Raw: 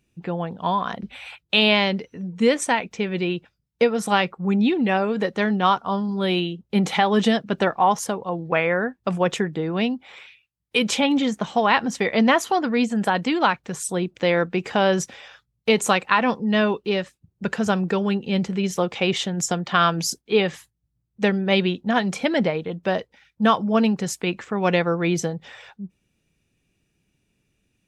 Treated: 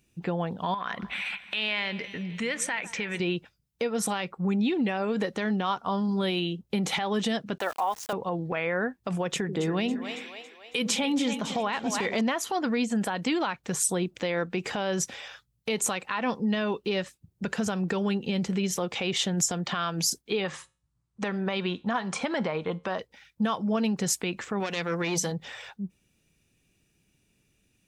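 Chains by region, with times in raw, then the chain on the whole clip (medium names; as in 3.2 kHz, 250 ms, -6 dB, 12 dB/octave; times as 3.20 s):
0.74–3.20 s: peaking EQ 1.9 kHz +13 dB 1.6 oct + compression 3:1, threshold -32 dBFS + two-band feedback delay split 1.6 kHz, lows 153 ms, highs 258 ms, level -16 dB
7.58–8.13 s: high-pass 500 Hz + distance through air 120 m + small samples zeroed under -37 dBFS
9.27–12.21 s: de-esser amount 35% + two-band feedback delay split 470 Hz, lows 86 ms, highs 277 ms, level -11.5 dB
20.44–22.99 s: steep low-pass 10 kHz 72 dB/octave + peaking EQ 1.1 kHz +11.5 dB 1 oct + feedback comb 76 Hz, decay 0.34 s, mix 30%
24.60–25.32 s: treble shelf 2.2 kHz +11 dB + hum notches 60/120/180/240 Hz + transformer saturation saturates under 1.8 kHz
whole clip: compression, threshold -23 dBFS; peak limiter -18.5 dBFS; treble shelf 4.6 kHz +6.5 dB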